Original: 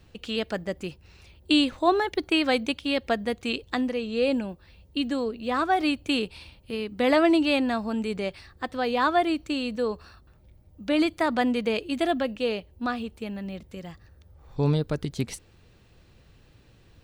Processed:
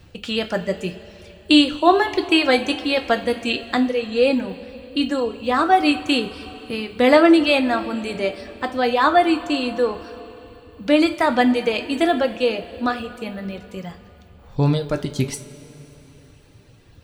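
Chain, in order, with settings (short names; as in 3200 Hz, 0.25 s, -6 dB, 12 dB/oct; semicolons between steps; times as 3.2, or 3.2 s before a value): reverb removal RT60 1.2 s; two-slope reverb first 0.28 s, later 3.7 s, from -18 dB, DRR 5 dB; gain +6.5 dB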